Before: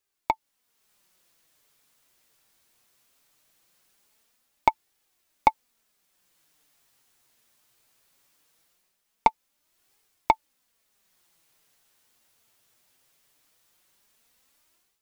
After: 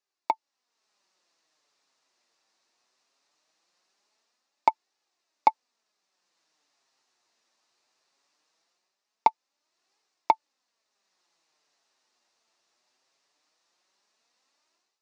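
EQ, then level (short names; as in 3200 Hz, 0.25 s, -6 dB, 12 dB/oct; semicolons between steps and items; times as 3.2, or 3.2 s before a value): speaker cabinet 360–6000 Hz, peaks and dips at 480 Hz -4 dB, 1500 Hz -5 dB, 2200 Hz -5 dB, 3200 Hz -8 dB; 0.0 dB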